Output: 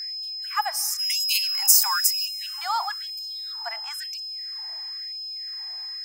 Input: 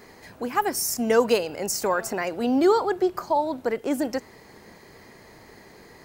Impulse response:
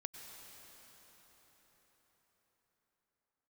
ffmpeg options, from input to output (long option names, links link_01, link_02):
-filter_complex "[0:a]aeval=exprs='val(0)+0.0316*sin(2*PI*5100*n/s)':channel_layout=same,asplit=3[link_01][link_02][link_03];[link_01]afade=type=out:start_time=0.98:duration=0.02[link_04];[link_02]aemphasis=mode=production:type=75fm,afade=type=in:start_time=0.98:duration=0.02,afade=type=out:start_time=2.25:duration=0.02[link_05];[link_03]afade=type=in:start_time=2.25:duration=0.02[link_06];[link_04][link_05][link_06]amix=inputs=3:normalize=0,asplit=2[link_07][link_08];[1:a]atrim=start_sample=2205[link_09];[link_08][link_09]afir=irnorm=-1:irlink=0,volume=-10.5dB[link_10];[link_07][link_10]amix=inputs=2:normalize=0,afftfilt=real='re*gte(b*sr/1024,620*pow(2500/620,0.5+0.5*sin(2*PI*1*pts/sr)))':imag='im*gte(b*sr/1024,620*pow(2500/620,0.5+0.5*sin(2*PI*1*pts/sr)))':win_size=1024:overlap=0.75,volume=-1.5dB"